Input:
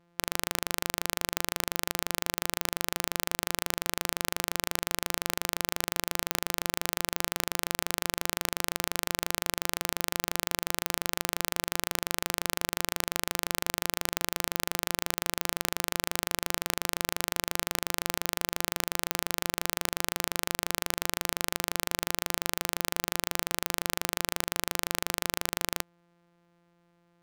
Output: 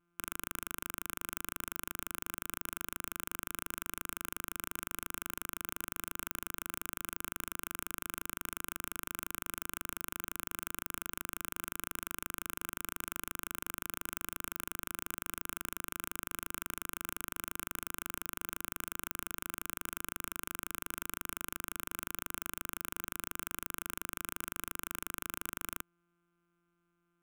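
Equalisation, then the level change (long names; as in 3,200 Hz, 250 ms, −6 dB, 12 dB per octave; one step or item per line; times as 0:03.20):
parametric band 1,600 Hz +13 dB 0.82 octaves
phaser with its sweep stopped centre 490 Hz, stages 6
phaser with its sweep stopped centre 1,900 Hz, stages 4
−5.5 dB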